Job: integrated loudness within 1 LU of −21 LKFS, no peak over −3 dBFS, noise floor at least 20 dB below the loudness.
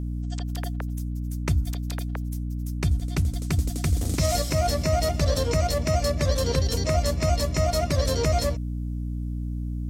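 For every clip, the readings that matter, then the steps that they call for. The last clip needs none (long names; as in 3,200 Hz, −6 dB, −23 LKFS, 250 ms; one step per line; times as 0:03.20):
mains hum 60 Hz; hum harmonics up to 300 Hz; level of the hum −27 dBFS; integrated loudness −26.0 LKFS; sample peak −11.5 dBFS; target loudness −21.0 LKFS
→ mains-hum notches 60/120/180/240/300 Hz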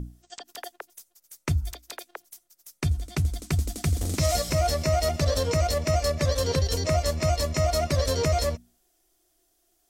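mains hum none found; integrated loudness −26.0 LKFS; sample peak −12.5 dBFS; target loudness −21.0 LKFS
→ level +5 dB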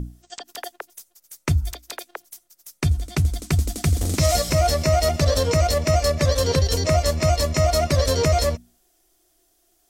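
integrated loudness −21.0 LKFS; sample peak −7.5 dBFS; background noise floor −65 dBFS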